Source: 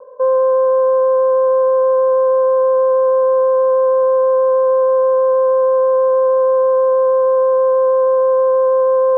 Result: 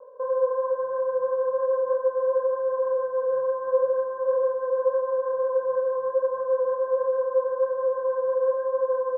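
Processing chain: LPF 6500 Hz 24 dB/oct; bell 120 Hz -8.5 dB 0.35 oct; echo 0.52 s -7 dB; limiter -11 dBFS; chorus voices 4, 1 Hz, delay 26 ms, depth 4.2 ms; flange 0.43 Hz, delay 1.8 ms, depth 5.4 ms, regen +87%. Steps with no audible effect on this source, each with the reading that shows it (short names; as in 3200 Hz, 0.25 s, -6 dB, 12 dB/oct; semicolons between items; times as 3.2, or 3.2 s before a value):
LPF 6500 Hz: input band ends at 1100 Hz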